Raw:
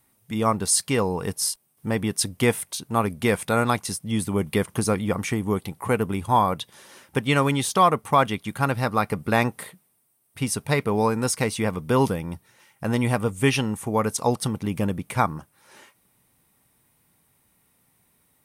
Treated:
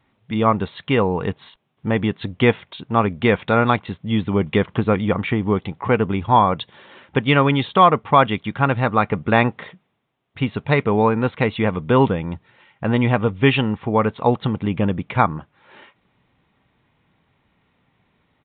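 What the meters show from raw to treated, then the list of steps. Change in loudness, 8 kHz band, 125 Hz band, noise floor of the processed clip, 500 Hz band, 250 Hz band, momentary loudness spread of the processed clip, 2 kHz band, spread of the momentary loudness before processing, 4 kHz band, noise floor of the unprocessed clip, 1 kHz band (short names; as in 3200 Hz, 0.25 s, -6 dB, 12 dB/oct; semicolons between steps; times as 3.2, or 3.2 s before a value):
+4.5 dB, under -40 dB, +5.0 dB, -66 dBFS, +5.0 dB, +5.0 dB, 9 LU, +5.0 dB, 7 LU, +2.0 dB, -66 dBFS, +5.0 dB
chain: downsampling 8000 Hz; gain +5 dB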